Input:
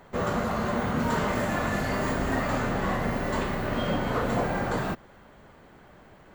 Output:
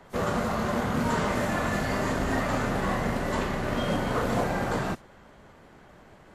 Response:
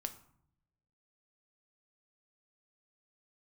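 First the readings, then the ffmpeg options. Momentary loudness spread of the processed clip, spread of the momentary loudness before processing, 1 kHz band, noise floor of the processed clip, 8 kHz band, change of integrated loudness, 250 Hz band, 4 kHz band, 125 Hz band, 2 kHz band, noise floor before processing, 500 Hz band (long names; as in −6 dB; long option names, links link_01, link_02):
3 LU, 2 LU, 0.0 dB, −53 dBFS, +2.5 dB, 0.0 dB, 0.0 dB, +1.0 dB, 0.0 dB, 0.0 dB, −53 dBFS, 0.0 dB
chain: -filter_complex "[0:a]acrossover=split=130|1000|2200[link_01][link_02][link_03][link_04];[link_02]acrusher=bits=4:mode=log:mix=0:aa=0.000001[link_05];[link_01][link_05][link_03][link_04]amix=inputs=4:normalize=0" -ar 32000 -c:a wmav2 -b:a 64k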